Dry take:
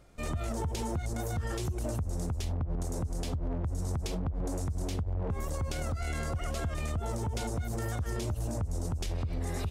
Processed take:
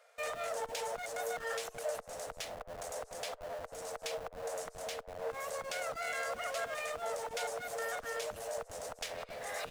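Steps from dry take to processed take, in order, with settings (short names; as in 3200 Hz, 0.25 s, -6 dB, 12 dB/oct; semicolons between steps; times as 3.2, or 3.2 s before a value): rippled Chebyshev high-pass 450 Hz, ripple 6 dB; in parallel at -8.5 dB: Schmitt trigger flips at -51.5 dBFS; on the sum: gain +3.5 dB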